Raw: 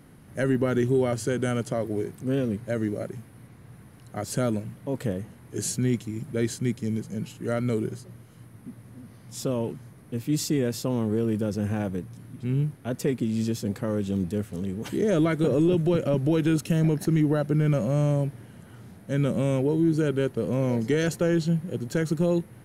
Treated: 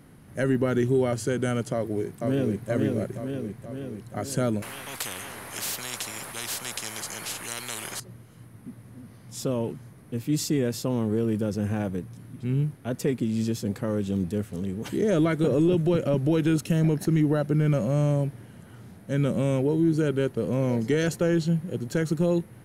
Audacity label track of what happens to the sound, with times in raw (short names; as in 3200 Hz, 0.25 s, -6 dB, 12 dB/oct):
1.730000	2.690000	echo throw 0.48 s, feedback 65%, level -3 dB
4.620000	8.000000	spectral compressor 10:1